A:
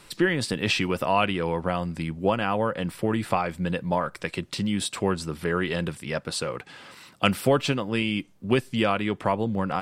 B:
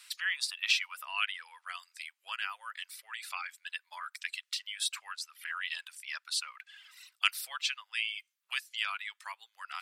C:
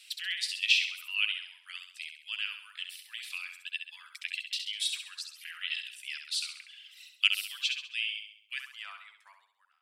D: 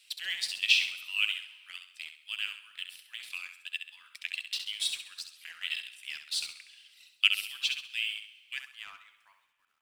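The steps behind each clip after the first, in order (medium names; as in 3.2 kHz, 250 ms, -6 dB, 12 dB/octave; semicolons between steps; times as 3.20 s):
Bessel high-pass 2.1 kHz, order 6; reverb removal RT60 1.6 s; dynamic bell 8.1 kHz, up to -5 dB, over -56 dBFS, Q 4
fade out at the end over 2.47 s; flutter echo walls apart 11.4 m, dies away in 0.59 s; high-pass sweep 2.8 kHz -> 380 Hz, 8.48–8.99 s; trim -3 dB
companding laws mixed up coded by A; plate-style reverb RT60 2.2 s, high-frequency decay 0.9×, DRR 17 dB; trim +1.5 dB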